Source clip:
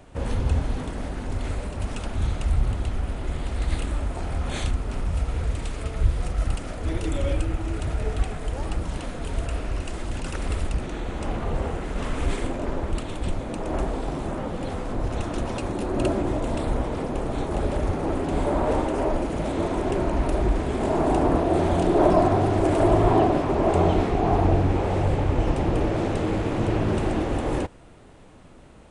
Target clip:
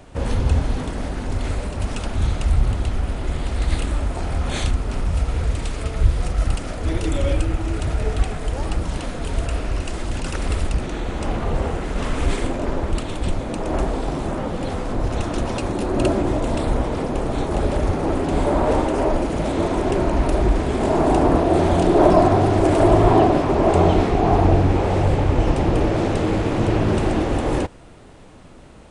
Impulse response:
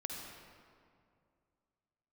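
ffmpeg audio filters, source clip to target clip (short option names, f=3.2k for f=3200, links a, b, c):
-af "equalizer=f=5k:w=1.5:g=2.5,volume=4.5dB"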